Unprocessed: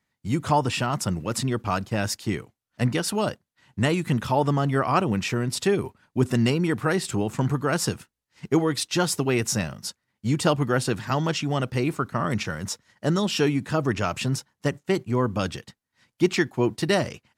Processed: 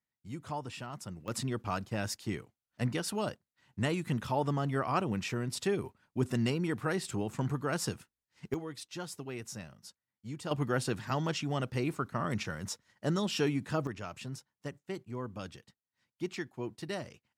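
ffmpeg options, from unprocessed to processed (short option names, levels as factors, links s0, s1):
-af "asetnsamples=n=441:p=0,asendcmd='1.28 volume volume -9dB;8.54 volume volume -18dB;10.51 volume volume -8dB;13.87 volume volume -16dB',volume=0.141"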